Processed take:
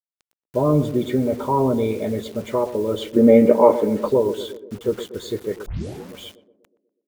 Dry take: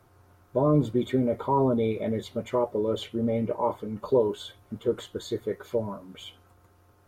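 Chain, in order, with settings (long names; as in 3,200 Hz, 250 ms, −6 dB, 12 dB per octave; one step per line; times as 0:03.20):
0:03.16–0:04.08: graphic EQ with 10 bands 125 Hz −4 dB, 250 Hz +9 dB, 500 Hz +11 dB, 2,000 Hz +12 dB
bit reduction 8 bits
feedback echo with a band-pass in the loop 122 ms, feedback 61%, band-pass 350 Hz, level −11 dB
0:05.66: tape start 0.43 s
level +4 dB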